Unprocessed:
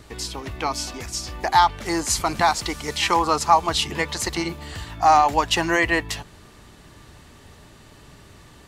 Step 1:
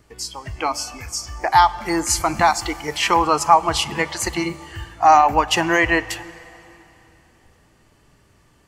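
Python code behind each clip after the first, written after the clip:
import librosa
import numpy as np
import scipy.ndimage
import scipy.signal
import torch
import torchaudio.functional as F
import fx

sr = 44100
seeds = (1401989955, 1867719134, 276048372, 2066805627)

y = fx.noise_reduce_blind(x, sr, reduce_db=12)
y = fx.peak_eq(y, sr, hz=3800.0, db=-10.0, octaves=0.2)
y = fx.rev_plate(y, sr, seeds[0], rt60_s=3.2, hf_ratio=0.9, predelay_ms=0, drr_db=17.0)
y = y * 10.0 ** (3.0 / 20.0)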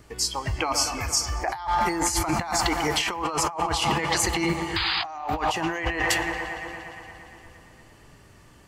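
y = fx.spec_paint(x, sr, seeds[1], shape='noise', start_s=4.76, length_s=0.28, low_hz=740.0, high_hz=5000.0, level_db=-21.0)
y = fx.echo_wet_lowpass(y, sr, ms=116, feedback_pct=78, hz=3300.0, wet_db=-16.0)
y = fx.over_compress(y, sr, threshold_db=-25.0, ratio=-1.0)
y = y * 10.0 ** (-1.5 / 20.0)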